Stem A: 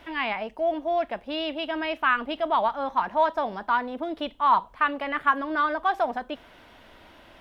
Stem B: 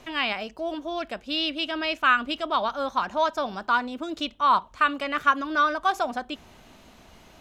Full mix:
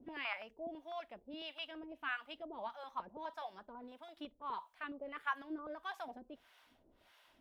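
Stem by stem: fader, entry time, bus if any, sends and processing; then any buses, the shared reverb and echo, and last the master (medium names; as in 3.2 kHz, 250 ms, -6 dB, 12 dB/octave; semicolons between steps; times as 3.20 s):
-16.0 dB, 0.00 s, no send, treble shelf 3.4 kHz +11 dB
+2.0 dB, 0.00 s, no send, step-sequenced band-pass 12 Hz 270–1700 Hz; auto duck -11 dB, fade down 0.70 s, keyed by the first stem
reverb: none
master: harmonic tremolo 1.6 Hz, depth 100%, crossover 650 Hz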